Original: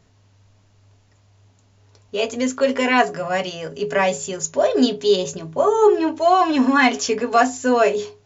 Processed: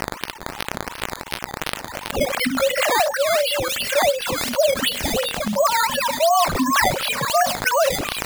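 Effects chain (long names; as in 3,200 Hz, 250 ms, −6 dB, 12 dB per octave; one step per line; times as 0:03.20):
three sine waves on the formant tracks
brickwall limiter −12 dBFS, peak gain reduction 11.5 dB
Chebyshev band-stop filter 250–560 Hz, order 4
low-shelf EQ 350 Hz +10 dB
mains-hum notches 50/100/150/200 Hz
surface crackle 120 per second −40 dBFS
high-shelf EQ 2,200 Hz +7 dB
sample-and-hold swept by an LFO 11×, swing 100% 2.8 Hz
on a send: delay with a high-pass on its return 1,075 ms, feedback 32%, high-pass 2,900 Hz, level −14 dB
on the sum: envelope flattener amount 70%
level −1.5 dB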